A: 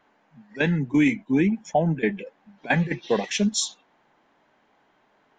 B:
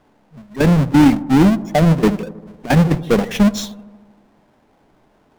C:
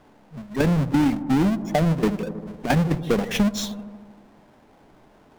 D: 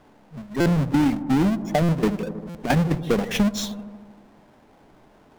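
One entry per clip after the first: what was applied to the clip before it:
half-waves squared off; tilt -2.5 dB/oct; dark delay 78 ms, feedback 68%, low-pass 980 Hz, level -16.5 dB; gain +1 dB
compressor 3:1, threshold -23 dBFS, peak gain reduction 12.5 dB; gain +2.5 dB
stuck buffer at 0.6/1.83/2.49, samples 256, times 9

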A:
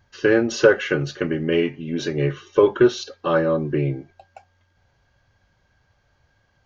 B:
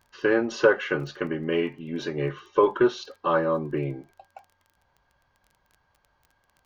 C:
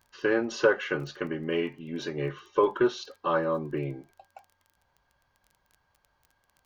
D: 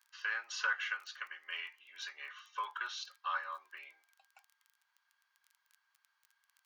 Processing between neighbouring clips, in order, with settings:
fifteen-band EQ 100 Hz -9 dB, 1000 Hz +9 dB, 6300 Hz -5 dB; crackle 17/s -37 dBFS; gain -5.5 dB
high shelf 4400 Hz +5 dB; gain -3.5 dB
HPF 1200 Hz 24 dB/oct; gain -3 dB

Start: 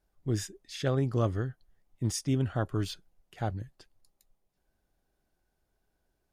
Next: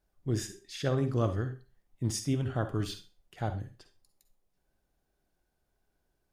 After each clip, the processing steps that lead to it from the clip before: reverb RT60 0.35 s, pre-delay 43 ms, DRR 9 dB; gain -1 dB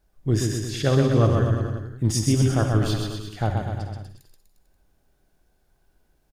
low shelf 86 Hz +5.5 dB; on a send: bouncing-ball echo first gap 0.13 s, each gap 0.9×, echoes 5; on the sum: gain +7.5 dB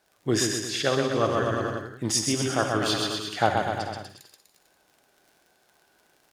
weighting filter A; vocal rider within 5 dB 0.5 s; crackle 56/s -50 dBFS; gain +4.5 dB

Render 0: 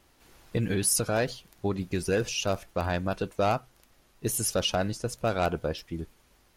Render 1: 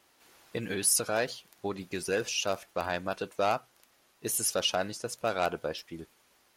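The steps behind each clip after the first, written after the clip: HPF 490 Hz 6 dB/oct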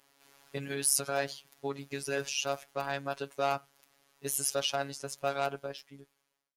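ending faded out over 1.23 s; robotiser 139 Hz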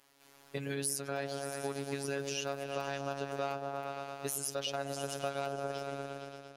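repeats that get brighter 0.115 s, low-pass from 750 Hz, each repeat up 1 oct, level -6 dB; compressor 4:1, threshold -32 dBFS, peak gain reduction 10 dB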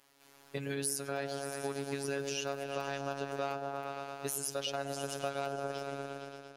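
reverb RT60 1.1 s, pre-delay 83 ms, DRR 17.5 dB

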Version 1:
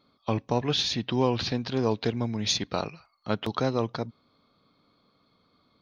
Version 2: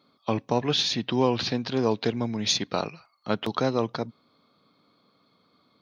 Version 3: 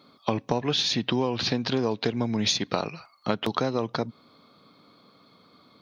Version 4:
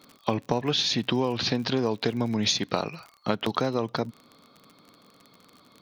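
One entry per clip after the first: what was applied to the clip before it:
HPF 130 Hz 12 dB/oct; gain +2 dB
compressor 6:1, threshold -30 dBFS, peak gain reduction 13 dB; gain +8 dB
crackle 43/s -36 dBFS

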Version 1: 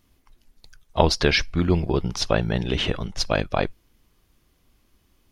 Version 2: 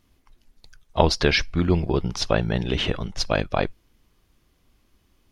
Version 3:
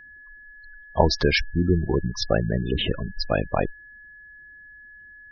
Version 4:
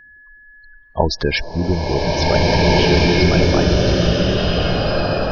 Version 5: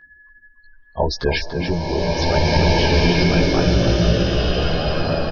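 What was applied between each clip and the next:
high shelf 10000 Hz -5.5 dB
spectral gate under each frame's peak -15 dB strong; whine 1700 Hz -44 dBFS
bloom reverb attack 1.76 s, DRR -7 dB; gain +1.5 dB
chorus voices 2, 0.39 Hz, delay 15 ms, depth 3 ms; echo 0.288 s -7.5 dB

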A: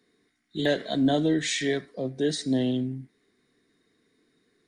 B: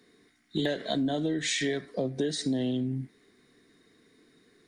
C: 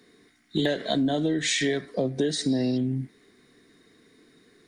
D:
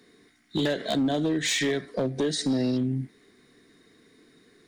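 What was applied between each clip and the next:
compressor 12:1, threshold -32 dBFS, peak gain reduction 14 dB; gain +6.5 dB
spectral repair 2.51–2.75, 2800–5700 Hz before; gain +4 dB
hard clip -20 dBFS, distortion -18 dB

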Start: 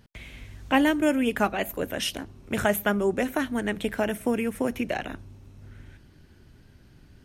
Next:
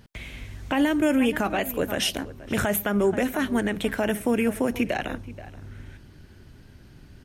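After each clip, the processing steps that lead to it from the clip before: outdoor echo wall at 82 m, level -18 dB; limiter -18.5 dBFS, peak gain reduction 11 dB; gain +4.5 dB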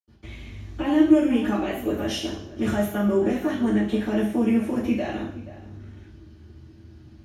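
high shelf 9200 Hz -4 dB; reverb RT60 0.60 s, pre-delay 77 ms; gain -5.5 dB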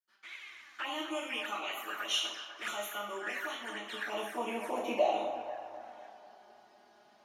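high-pass sweep 1400 Hz -> 700 Hz, 3.67–4.96; envelope flanger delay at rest 5.5 ms, full sweep at -30.5 dBFS; narrowing echo 0.249 s, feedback 63%, band-pass 920 Hz, level -8 dB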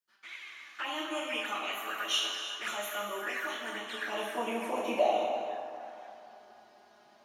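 non-linear reverb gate 0.39 s flat, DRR 6 dB; gain +1.5 dB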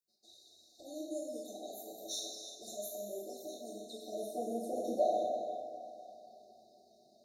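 in parallel at -6 dB: soft clip -25.5 dBFS, distortion -13 dB; on the sum: brick-wall FIR band-stop 770–3600 Hz; gain -5.5 dB

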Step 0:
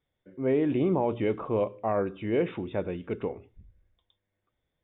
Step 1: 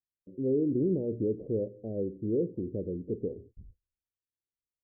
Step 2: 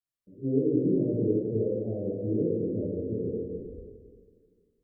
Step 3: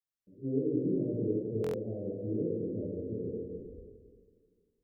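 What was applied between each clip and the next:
in parallel at +1 dB: compressor, threshold -36 dBFS, peak gain reduction 14 dB; on the sum: gate -48 dBFS, range -28 dB; steep low-pass 500 Hz 48 dB/oct; gain -4 dB
plate-style reverb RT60 2 s, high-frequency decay 0.65×, DRR -10 dB; gain -7.5 dB
stuck buffer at 1.62, samples 1024, times 4; gain -5.5 dB

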